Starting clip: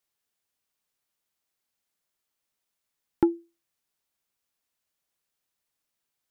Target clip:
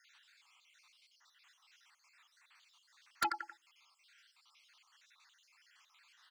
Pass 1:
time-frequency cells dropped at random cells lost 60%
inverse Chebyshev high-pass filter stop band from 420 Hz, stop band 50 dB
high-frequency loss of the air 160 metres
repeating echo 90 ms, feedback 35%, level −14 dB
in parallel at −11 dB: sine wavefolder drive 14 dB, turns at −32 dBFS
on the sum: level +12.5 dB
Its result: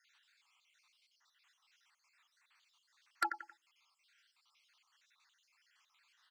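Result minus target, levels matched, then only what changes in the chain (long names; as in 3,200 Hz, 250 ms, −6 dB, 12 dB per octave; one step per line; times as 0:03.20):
sine wavefolder: distortion −4 dB
change: sine wavefolder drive 22 dB, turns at −32 dBFS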